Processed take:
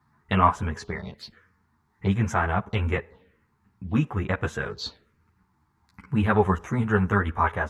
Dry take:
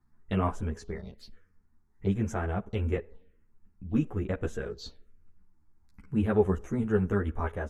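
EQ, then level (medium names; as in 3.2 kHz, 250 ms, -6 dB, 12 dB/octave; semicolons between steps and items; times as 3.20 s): high-pass 82 Hz; dynamic bell 370 Hz, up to -5 dB, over -40 dBFS, Q 0.76; graphic EQ 125/1000/2000/4000 Hz +6/+11/+6/+6 dB; +4.0 dB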